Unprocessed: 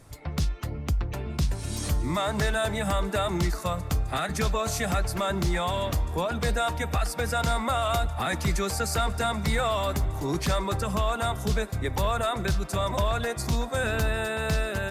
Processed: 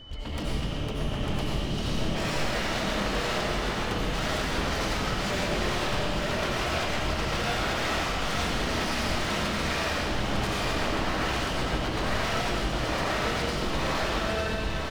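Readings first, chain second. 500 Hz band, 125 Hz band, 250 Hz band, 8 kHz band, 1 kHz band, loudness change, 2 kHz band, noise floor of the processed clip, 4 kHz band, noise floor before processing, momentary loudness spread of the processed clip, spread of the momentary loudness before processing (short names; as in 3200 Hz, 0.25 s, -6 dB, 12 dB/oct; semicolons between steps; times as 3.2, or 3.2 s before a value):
-1.5 dB, -4.0 dB, +0.5 dB, -2.5 dB, -1.0 dB, -0.5 dB, +2.5 dB, -31 dBFS, +4.0 dB, -36 dBFS, 3 LU, 3 LU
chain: ending faded out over 1.31 s; LPF 4900 Hz 24 dB/oct; low shelf 140 Hz +7.5 dB; notches 50/100/150/200 Hz; compressor 4:1, threshold -25 dBFS, peak gain reduction 8.5 dB; flange 0.45 Hz, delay 3.3 ms, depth 5.4 ms, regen -39%; whine 3000 Hz -51 dBFS; wavefolder -34.5 dBFS; echo 0.899 s -5.5 dB; digital reverb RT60 1.6 s, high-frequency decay 0.95×, pre-delay 50 ms, DRR -5.5 dB; gain +4 dB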